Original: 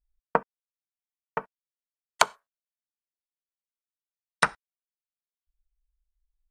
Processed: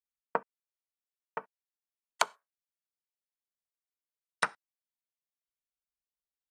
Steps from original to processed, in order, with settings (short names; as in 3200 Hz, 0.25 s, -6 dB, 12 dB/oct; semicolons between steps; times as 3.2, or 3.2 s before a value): Bessel high-pass 250 Hz, order 2; gain -7 dB